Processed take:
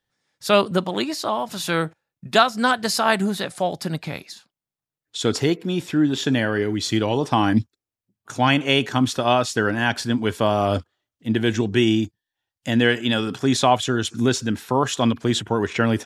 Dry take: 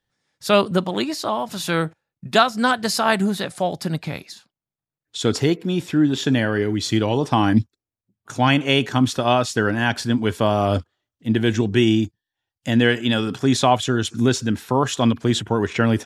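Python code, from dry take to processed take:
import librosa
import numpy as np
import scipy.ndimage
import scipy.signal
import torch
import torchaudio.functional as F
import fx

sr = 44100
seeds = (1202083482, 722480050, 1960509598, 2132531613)

y = fx.low_shelf(x, sr, hz=220.0, db=-4.0)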